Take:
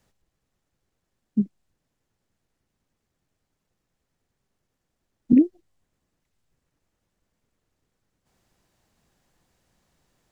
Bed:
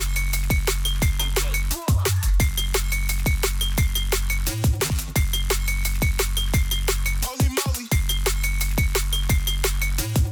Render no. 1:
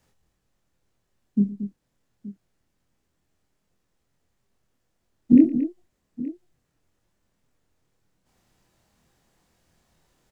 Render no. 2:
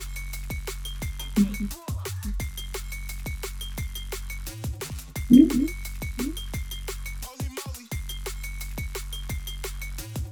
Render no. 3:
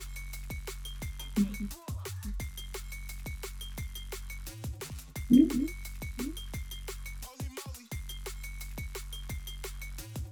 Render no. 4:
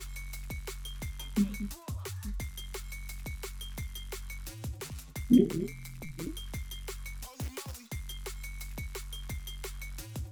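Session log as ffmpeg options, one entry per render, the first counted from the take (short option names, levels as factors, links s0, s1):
-filter_complex "[0:a]asplit=2[s0][s1];[s1]adelay=25,volume=0.708[s2];[s0][s2]amix=inputs=2:normalize=0,asplit=2[s3][s4];[s4]aecho=0:1:41|115|228|874:0.15|0.141|0.282|0.133[s5];[s3][s5]amix=inputs=2:normalize=0"
-filter_complex "[1:a]volume=0.266[s0];[0:a][s0]amix=inputs=2:normalize=0"
-af "volume=0.447"
-filter_complex "[0:a]asettb=1/sr,asplit=3[s0][s1][s2];[s0]atrim=end=5.384[s3];[s1]atrim=start=5.38:end=6.27,asetpts=PTS-STARTPTS,afade=t=in:d=0.004:c=qsin,afade=t=out:st=0.886:d=0.004:c=qsin,aeval=exprs='val(0)*sin(2*PI*83*n/s)':c=same[s4];[s2]atrim=start=6.266[s5];[s3][s4]acrossfade=d=0.004:c1=hsin:c2=qsin[s6];[s6][s5]acrossfade=d=0.004:c1=qsin:c2=hsin,asettb=1/sr,asplit=3[s7][s8][s9];[s7]atrim=end=7.334[s10];[s8]atrim=start=7.33:end=7.88,asetpts=PTS-STARTPTS,afade=t=in:d=0.004:c=qsin,afade=t=out:st=0.546:d=0.004:c=qsin,acrusher=bits=2:mode=log:mix=0:aa=0.000001[s11];[s9]atrim=start=7.876[s12];[s10][s11]acrossfade=d=0.004:c1=hsin:c2=qsin[s13];[s13][s12]acrossfade=d=0.004:c1=qsin:c2=hsin"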